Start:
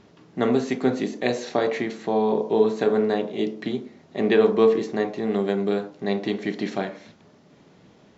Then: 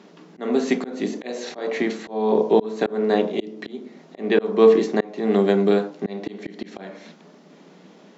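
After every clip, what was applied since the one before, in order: elliptic high-pass 170 Hz; auto swell 0.322 s; gain +6 dB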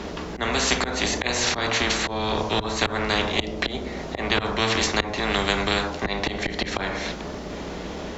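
octaver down 2 oct, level -4 dB; spectral compressor 4:1; gain -1 dB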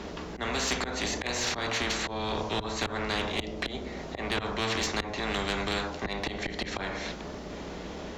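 soft clip -13 dBFS, distortion -18 dB; gain -6 dB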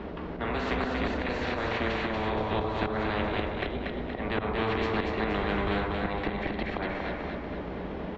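air absorption 470 m; feedback echo 0.236 s, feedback 51%, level -3.5 dB; gain +2.5 dB

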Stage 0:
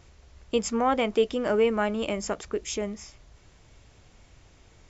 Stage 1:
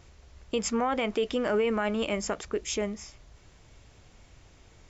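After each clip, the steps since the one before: dynamic EQ 2000 Hz, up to +4 dB, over -38 dBFS, Q 0.72; limiter -18.5 dBFS, peak gain reduction 7.5 dB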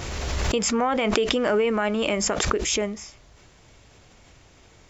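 low shelf 98 Hz -7.5 dB; backwards sustainer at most 23 dB/s; gain +4.5 dB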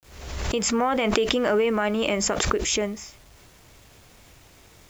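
opening faded in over 0.68 s; bit-crush 9-bit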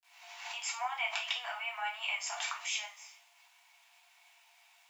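rippled Chebyshev high-pass 670 Hz, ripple 9 dB; two-slope reverb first 0.33 s, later 1.9 s, from -28 dB, DRR -3 dB; gain -9 dB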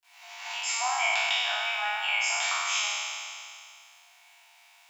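spectral trails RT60 2.40 s; gain +3 dB

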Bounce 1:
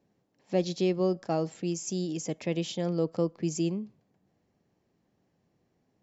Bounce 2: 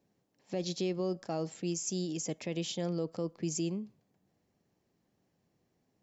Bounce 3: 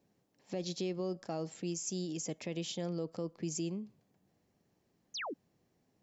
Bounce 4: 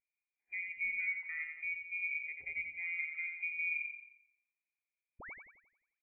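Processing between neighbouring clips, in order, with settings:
high shelf 4000 Hz +6 dB; limiter -20.5 dBFS, peak gain reduction 6.5 dB; gain -3.5 dB
in parallel at +1 dB: compressor, threshold -43 dBFS, peak gain reduction 13 dB; on the sum: painted sound fall, 5.14–5.34, 230–6900 Hz -34 dBFS; gain -5.5 dB
inverted band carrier 2600 Hz; feedback echo 88 ms, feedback 59%, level -4 dB; spectral expander 1.5:1; gain -2.5 dB

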